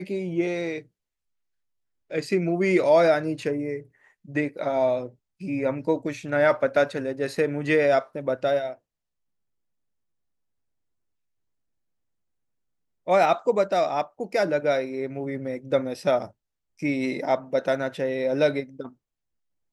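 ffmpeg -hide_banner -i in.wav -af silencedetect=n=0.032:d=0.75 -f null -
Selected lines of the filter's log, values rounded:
silence_start: 0.79
silence_end: 2.12 | silence_duration: 1.33
silence_start: 8.72
silence_end: 13.08 | silence_duration: 4.36
silence_start: 18.86
silence_end: 19.72 | silence_duration: 0.86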